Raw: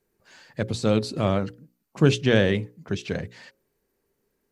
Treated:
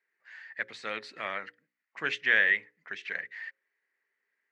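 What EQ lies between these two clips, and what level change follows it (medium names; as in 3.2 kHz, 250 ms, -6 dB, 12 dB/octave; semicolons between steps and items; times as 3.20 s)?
high-pass 230 Hz 6 dB/octave; resonant low-pass 1.9 kHz, resonance Q 6.7; differentiator; +6.0 dB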